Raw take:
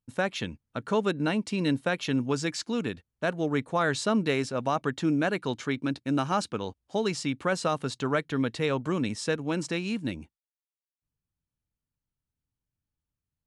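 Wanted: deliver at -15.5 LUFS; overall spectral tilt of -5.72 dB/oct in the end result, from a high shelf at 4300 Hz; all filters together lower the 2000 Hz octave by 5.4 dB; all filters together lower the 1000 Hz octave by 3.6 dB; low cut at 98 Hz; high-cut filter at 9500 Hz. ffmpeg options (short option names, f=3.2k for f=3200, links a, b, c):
-af "highpass=98,lowpass=9.5k,equalizer=f=1k:t=o:g=-3,equalizer=f=2k:t=o:g=-4.5,highshelf=f=4.3k:g=-8.5,volume=15dB"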